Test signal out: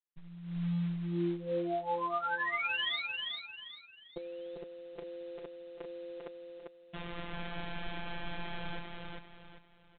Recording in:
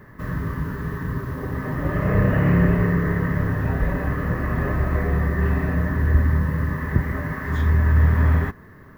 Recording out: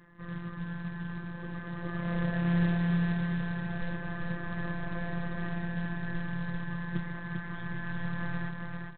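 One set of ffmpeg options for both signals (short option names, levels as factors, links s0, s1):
-af "afftfilt=real='hypot(re,im)*cos(PI*b)':imag='0':win_size=1024:overlap=0.75,aresample=8000,acrusher=bits=5:mode=log:mix=0:aa=0.000001,aresample=44100,aecho=1:1:396|792|1188|1584:0.668|0.227|0.0773|0.0263,volume=0.376"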